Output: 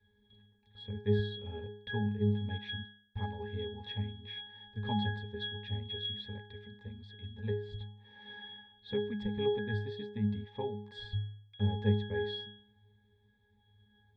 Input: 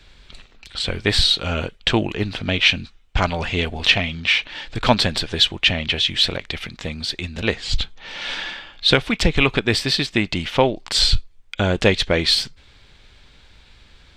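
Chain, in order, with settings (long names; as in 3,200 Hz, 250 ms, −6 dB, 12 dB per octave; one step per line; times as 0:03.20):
resonances in every octave G#, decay 0.6 s
level +2 dB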